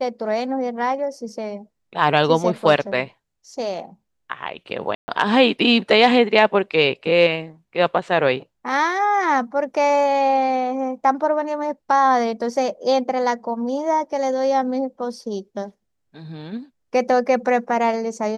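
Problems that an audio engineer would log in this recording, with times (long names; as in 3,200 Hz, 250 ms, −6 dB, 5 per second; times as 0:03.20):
0:04.95–0:05.08: drop-out 130 ms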